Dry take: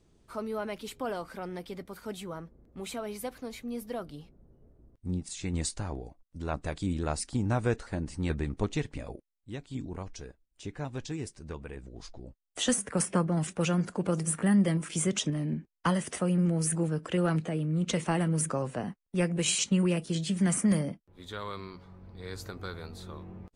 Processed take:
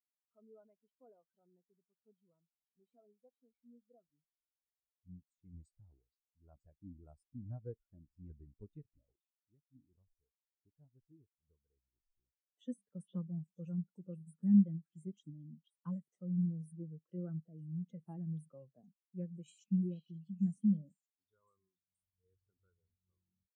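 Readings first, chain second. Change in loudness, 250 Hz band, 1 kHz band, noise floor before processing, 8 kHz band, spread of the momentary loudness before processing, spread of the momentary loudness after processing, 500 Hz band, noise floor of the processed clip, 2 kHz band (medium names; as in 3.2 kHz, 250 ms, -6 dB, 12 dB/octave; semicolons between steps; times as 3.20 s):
-7.0 dB, -8.0 dB, under -30 dB, -72 dBFS, under -35 dB, 17 LU, 23 LU, -23.0 dB, under -85 dBFS, under -40 dB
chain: repeats whose band climbs or falls 474 ms, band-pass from 3.6 kHz, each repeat 0.7 oct, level -2.5 dB; spectral contrast expander 2.5:1; trim -5 dB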